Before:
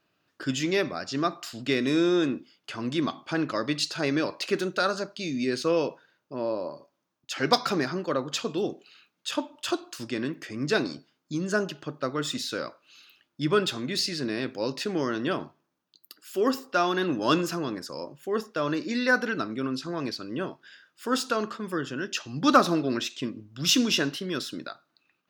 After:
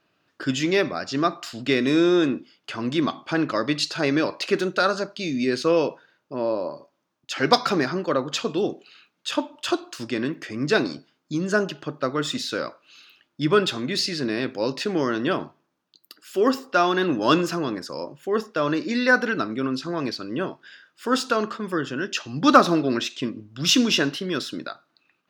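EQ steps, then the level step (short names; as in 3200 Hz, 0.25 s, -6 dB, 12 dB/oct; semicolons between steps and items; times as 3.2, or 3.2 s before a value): low shelf 150 Hz -3 dB; high shelf 7800 Hz -8.5 dB; +5.0 dB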